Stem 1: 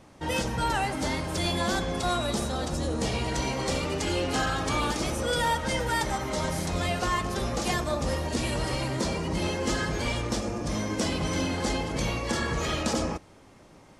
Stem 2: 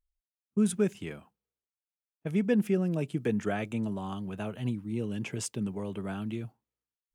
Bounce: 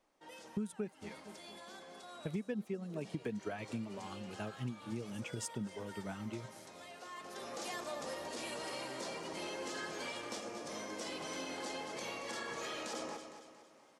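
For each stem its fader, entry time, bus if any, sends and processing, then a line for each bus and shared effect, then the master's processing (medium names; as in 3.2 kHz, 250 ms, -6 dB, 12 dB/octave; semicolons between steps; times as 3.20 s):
6.90 s -20.5 dB -> 7.62 s -10 dB, 0.00 s, no send, echo send -10 dB, high-pass 360 Hz 12 dB/octave; peak limiter -22 dBFS, peak gain reduction 6.5 dB
+2.5 dB, 0.00 s, no send, echo send -22.5 dB, reverb removal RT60 1 s; upward expansion 1.5:1, over -41 dBFS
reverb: none
echo: feedback delay 229 ms, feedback 43%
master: compression 8:1, threshold -36 dBFS, peak gain reduction 17 dB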